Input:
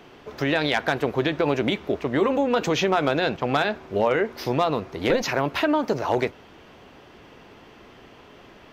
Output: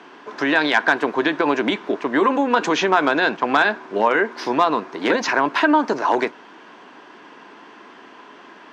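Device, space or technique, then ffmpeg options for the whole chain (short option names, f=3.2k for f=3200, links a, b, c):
television speaker: -af "highpass=f=210:w=0.5412,highpass=f=210:w=1.3066,equalizer=f=300:t=q:w=4:g=3,equalizer=f=530:t=q:w=4:g=-4,equalizer=f=1k:t=q:w=4:g=9,equalizer=f=1.6k:t=q:w=4:g=8,lowpass=f=8.9k:w=0.5412,lowpass=f=8.9k:w=1.3066,volume=2.5dB"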